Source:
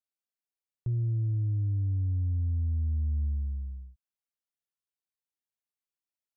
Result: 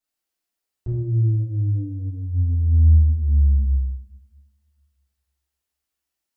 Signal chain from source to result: two-slope reverb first 0.83 s, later 2.1 s, DRR -9.5 dB; trim +1 dB

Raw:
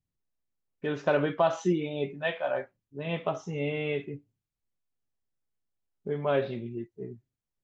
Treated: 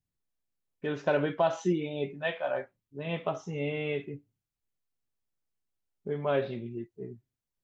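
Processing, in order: 1.03–2.11 s: band-stop 1.2 kHz, Q 9.1; trim -1.5 dB

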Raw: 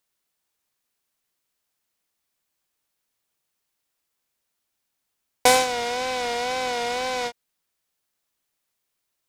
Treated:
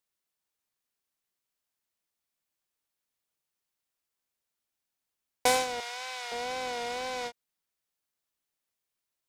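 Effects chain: 5.80–6.32 s: high-pass 970 Hz 12 dB/octave; trim -8 dB

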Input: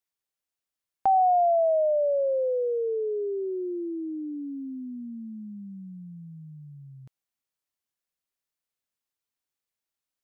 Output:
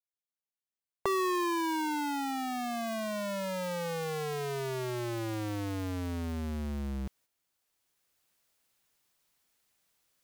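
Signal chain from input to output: cycle switcher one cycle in 2, inverted; recorder AGC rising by 8.1 dB/s; gate -51 dBFS, range -7 dB; trim -9 dB

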